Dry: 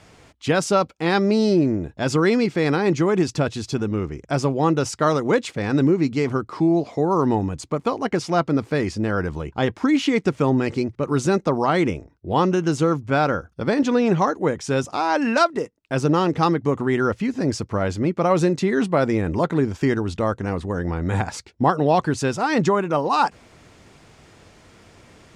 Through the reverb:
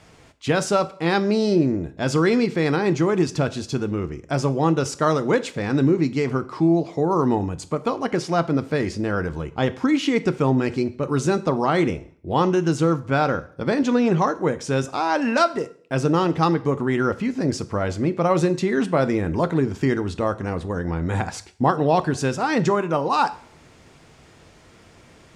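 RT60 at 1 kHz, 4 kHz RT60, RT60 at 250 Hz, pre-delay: 0.55 s, 0.50 s, 0.55 s, 4 ms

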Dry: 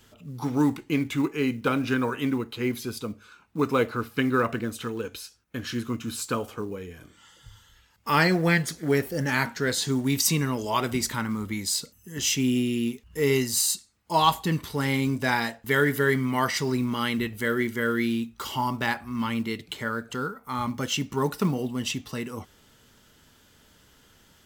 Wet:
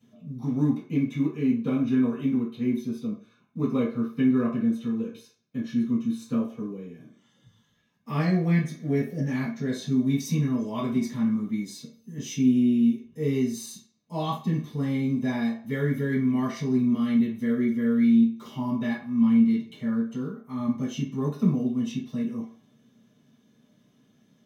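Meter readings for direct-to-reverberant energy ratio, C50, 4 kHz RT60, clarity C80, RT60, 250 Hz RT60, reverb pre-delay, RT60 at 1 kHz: -9.0 dB, 6.5 dB, 0.45 s, 12.0 dB, 0.50 s, 0.35 s, 3 ms, 0.50 s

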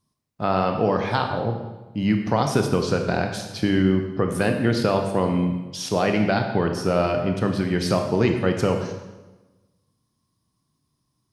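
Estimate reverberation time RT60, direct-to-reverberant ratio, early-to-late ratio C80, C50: 1.1 s, 4.0 dB, 7.5 dB, 6.0 dB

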